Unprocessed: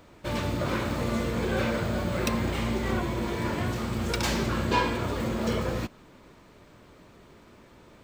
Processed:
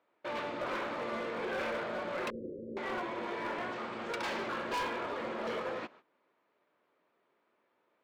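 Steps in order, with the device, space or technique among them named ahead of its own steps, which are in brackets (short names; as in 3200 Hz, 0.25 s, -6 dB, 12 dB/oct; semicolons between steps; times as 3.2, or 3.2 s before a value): walkie-talkie (BPF 460–2600 Hz; hard clip -29.5 dBFS, distortion -11 dB; gate -53 dBFS, range -16 dB); 2.3–2.77 steep low-pass 530 Hz 96 dB/oct; gain -2 dB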